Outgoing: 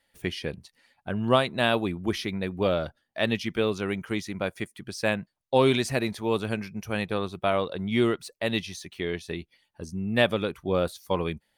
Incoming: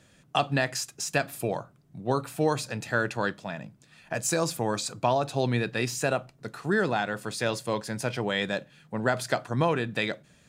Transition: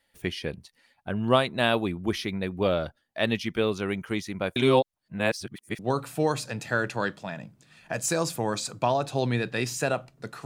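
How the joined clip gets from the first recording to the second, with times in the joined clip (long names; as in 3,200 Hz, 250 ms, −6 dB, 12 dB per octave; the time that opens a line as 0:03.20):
outgoing
0:04.56–0:05.79: reverse
0:05.79: continue with incoming from 0:02.00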